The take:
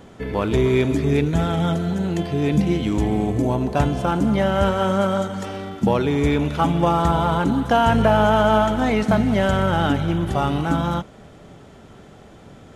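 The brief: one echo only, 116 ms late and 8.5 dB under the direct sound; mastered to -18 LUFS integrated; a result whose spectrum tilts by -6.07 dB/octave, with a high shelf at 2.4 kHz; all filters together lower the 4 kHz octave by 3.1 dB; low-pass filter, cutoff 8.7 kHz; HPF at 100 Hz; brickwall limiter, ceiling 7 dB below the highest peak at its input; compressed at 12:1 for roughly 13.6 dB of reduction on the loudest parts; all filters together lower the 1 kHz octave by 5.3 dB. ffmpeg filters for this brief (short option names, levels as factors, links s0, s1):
-af "highpass=100,lowpass=8700,equalizer=f=1000:t=o:g=-7.5,highshelf=f=2400:g=3,equalizer=f=4000:t=o:g=-6.5,acompressor=threshold=0.0355:ratio=12,alimiter=level_in=1.06:limit=0.0631:level=0:latency=1,volume=0.944,aecho=1:1:116:0.376,volume=6.31"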